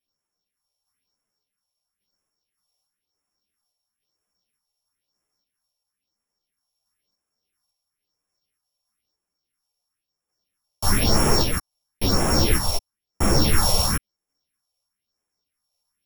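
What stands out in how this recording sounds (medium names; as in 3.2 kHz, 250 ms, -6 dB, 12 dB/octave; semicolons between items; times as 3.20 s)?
a buzz of ramps at a fixed pitch in blocks of 8 samples; phasing stages 4, 1 Hz, lowest notch 270–4100 Hz; random-step tremolo; a shimmering, thickened sound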